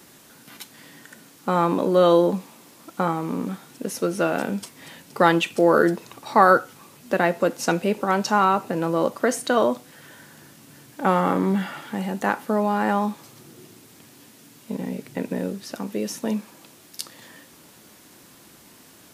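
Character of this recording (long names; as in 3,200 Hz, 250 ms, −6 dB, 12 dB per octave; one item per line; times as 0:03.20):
background noise floor −51 dBFS
spectral slope −4.5 dB per octave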